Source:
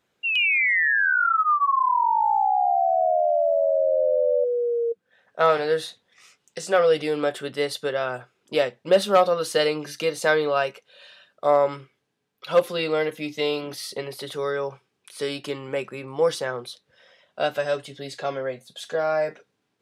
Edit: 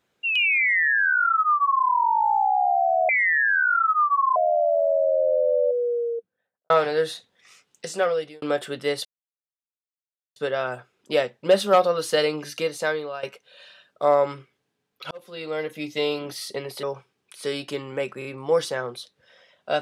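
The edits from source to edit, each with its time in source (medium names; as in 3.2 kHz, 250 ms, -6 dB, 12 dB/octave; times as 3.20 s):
0.59–1.86 s: copy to 3.09 s
4.51–5.43 s: studio fade out
6.60–7.15 s: fade out
7.78 s: insert silence 1.31 s
9.95–10.65 s: fade out, to -15 dB
12.53–13.35 s: fade in
14.25–14.59 s: delete
15.95 s: stutter 0.03 s, 3 plays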